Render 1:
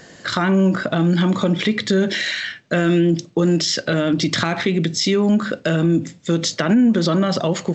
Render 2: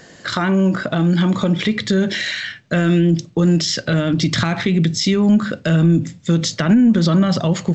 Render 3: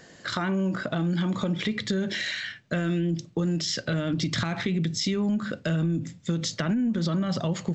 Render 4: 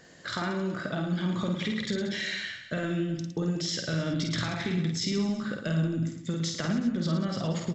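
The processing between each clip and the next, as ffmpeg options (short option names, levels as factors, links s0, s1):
-af "asubboost=boost=3.5:cutoff=180"
-af "acompressor=threshold=0.178:ratio=6,volume=0.422"
-af "aecho=1:1:50|110|182|268.4|372.1:0.631|0.398|0.251|0.158|0.1,volume=0.596"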